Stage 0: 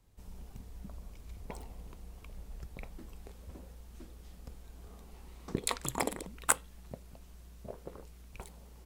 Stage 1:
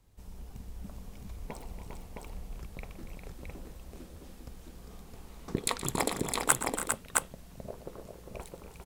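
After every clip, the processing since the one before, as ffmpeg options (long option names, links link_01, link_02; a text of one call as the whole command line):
ffmpeg -i in.wav -af "aecho=1:1:121|282|312|402|664:0.2|0.237|0.188|0.473|0.708,volume=2dB" out.wav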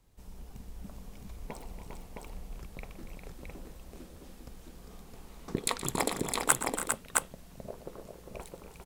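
ffmpeg -i in.wav -af "equalizer=frequency=81:width_type=o:width=1.1:gain=-4.5" out.wav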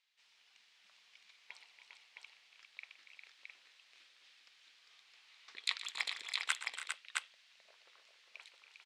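ffmpeg -i in.wav -af "asuperpass=centerf=3000:order=4:qfactor=1.1,volume=1.5dB" out.wav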